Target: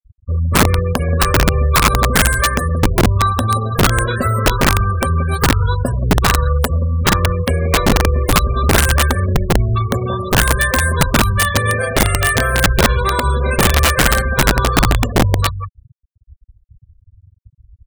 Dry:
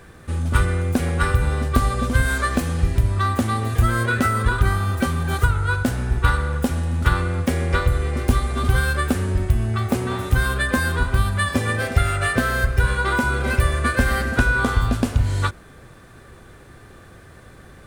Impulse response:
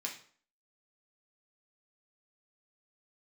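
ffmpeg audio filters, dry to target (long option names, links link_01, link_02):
-filter_complex "[0:a]aecho=1:1:1.8:0.56,asplit=2[link_01][link_02];[link_02]aecho=0:1:178:0.316[link_03];[link_01][link_03]amix=inputs=2:normalize=0,acrusher=bits=7:mode=log:mix=0:aa=0.000001,highshelf=frequency=8100:gain=8.5,bandreject=frequency=1500:width=12,afftfilt=real='re*gte(hypot(re,im),0.0794)':imag='im*gte(hypot(re,im),0.0794)':win_size=1024:overlap=0.75,aeval=exprs='(mod(2.99*val(0)+1,2)-1)/2.99':channel_layout=same,volume=4dB"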